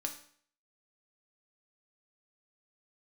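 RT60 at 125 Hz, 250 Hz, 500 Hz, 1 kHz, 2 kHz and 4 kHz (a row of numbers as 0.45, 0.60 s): 0.55, 0.55, 0.55, 0.55, 0.55, 0.55 s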